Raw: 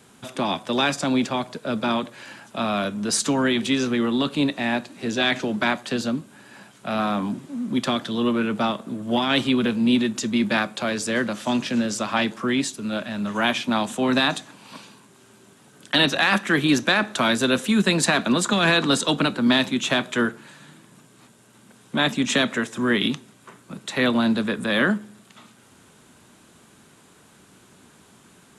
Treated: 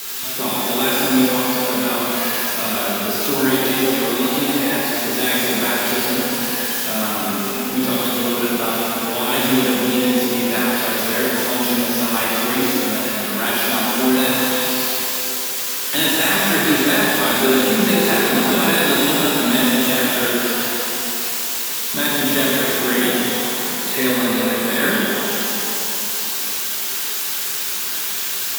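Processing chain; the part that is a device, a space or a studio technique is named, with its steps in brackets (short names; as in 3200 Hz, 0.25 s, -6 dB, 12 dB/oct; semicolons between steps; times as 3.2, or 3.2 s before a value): reverb removal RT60 1.9 s; bell 410 Hz +6.5 dB 0.26 oct; budget class-D amplifier (switching dead time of 0.061 ms; switching spikes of -12 dBFS); shimmer reverb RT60 3.5 s, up +12 st, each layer -8 dB, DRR -7.5 dB; gain -4.5 dB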